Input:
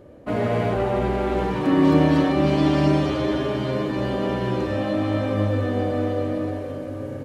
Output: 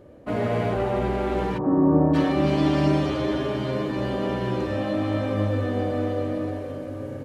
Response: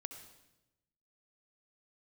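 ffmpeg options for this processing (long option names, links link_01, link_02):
-filter_complex "[0:a]asplit=3[link_01][link_02][link_03];[link_01]afade=type=out:start_time=1.57:duration=0.02[link_04];[link_02]lowpass=frequency=1100:width=0.5412,lowpass=frequency=1100:width=1.3066,afade=type=in:start_time=1.57:duration=0.02,afade=type=out:start_time=2.13:duration=0.02[link_05];[link_03]afade=type=in:start_time=2.13:duration=0.02[link_06];[link_04][link_05][link_06]amix=inputs=3:normalize=0,volume=-2dB"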